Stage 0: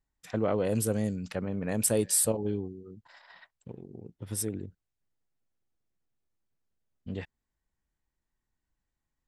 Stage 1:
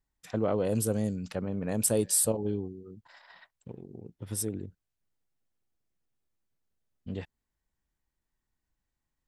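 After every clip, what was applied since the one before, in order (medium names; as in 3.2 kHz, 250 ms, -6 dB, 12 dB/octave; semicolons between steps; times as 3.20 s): dynamic bell 2 kHz, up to -5 dB, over -53 dBFS, Q 1.5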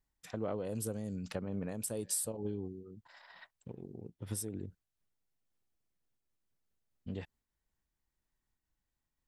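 compression 12:1, threshold -31 dBFS, peak gain reduction 10.5 dB; random flutter of the level, depth 55%; trim +1 dB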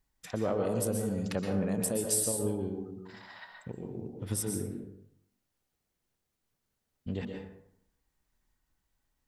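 plate-style reverb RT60 0.73 s, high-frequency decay 0.55×, pre-delay 110 ms, DRR 2 dB; trim +5.5 dB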